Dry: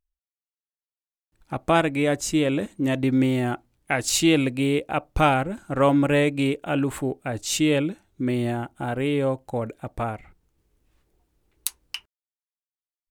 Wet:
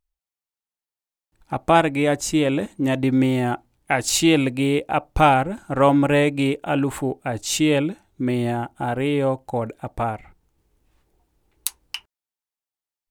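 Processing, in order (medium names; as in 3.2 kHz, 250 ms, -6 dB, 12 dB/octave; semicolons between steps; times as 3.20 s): peaking EQ 840 Hz +5 dB 0.47 oct; trim +2 dB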